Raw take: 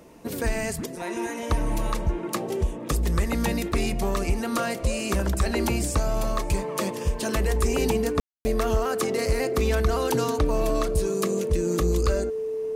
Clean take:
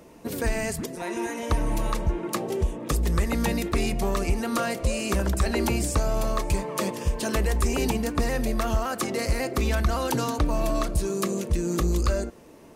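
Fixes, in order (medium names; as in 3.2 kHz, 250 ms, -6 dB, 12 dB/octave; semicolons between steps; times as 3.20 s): band-stop 440 Hz, Q 30; room tone fill 8.20–8.45 s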